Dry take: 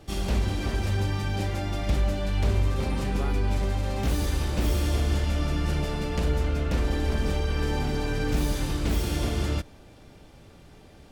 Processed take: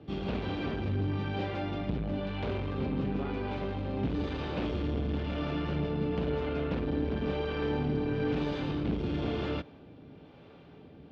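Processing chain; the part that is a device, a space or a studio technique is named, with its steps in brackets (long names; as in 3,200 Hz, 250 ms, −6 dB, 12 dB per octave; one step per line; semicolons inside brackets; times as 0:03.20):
guitar amplifier with harmonic tremolo (two-band tremolo in antiphase 1 Hz, depth 50%, crossover 400 Hz; soft clipping −23.5 dBFS, distortion −15 dB; loudspeaker in its box 95–3,500 Hz, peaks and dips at 160 Hz +5 dB, 270 Hz +6 dB, 440 Hz +5 dB, 1,900 Hz −4 dB)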